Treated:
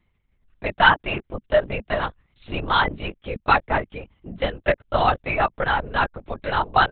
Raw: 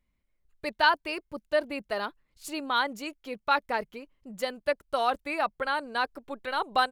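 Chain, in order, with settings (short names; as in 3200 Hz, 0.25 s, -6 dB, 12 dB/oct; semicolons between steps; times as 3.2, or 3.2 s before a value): LPC vocoder at 8 kHz whisper; gain +7.5 dB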